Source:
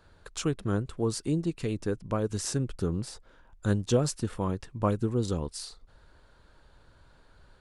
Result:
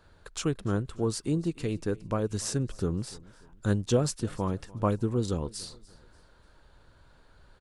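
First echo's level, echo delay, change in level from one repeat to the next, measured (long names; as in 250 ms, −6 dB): −22.0 dB, 293 ms, −8.5 dB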